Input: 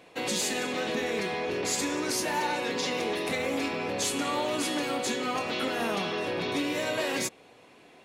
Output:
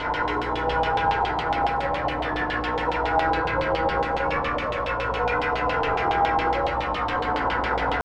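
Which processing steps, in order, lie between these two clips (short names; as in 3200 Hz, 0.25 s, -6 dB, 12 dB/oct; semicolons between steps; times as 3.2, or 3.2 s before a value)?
infinite clipping; pitch shift +11.5 st; high shelf 3600 Hz -12 dB; buzz 60 Hz, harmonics 23, -46 dBFS -1 dB/oct; low shelf 120 Hz +9 dB; notch 1200 Hz, Q 20; FDN reverb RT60 2.2 s, low-frequency decay 1.2×, high-frequency decay 0.75×, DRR -5.5 dB; LFO low-pass saw down 7.2 Hz 740–3400 Hz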